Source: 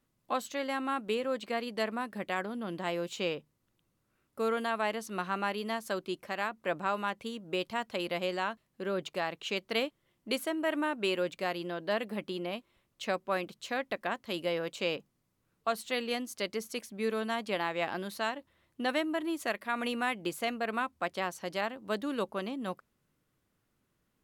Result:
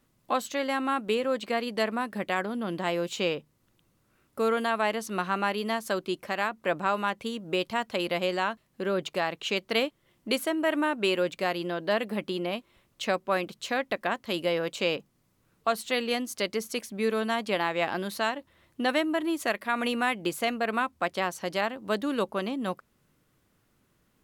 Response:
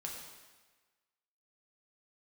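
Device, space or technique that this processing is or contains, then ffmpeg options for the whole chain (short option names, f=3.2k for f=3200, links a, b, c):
parallel compression: -filter_complex "[0:a]asplit=2[a][b];[b]acompressor=threshold=-45dB:ratio=6,volume=-4dB[c];[a][c]amix=inputs=2:normalize=0,volume=4dB"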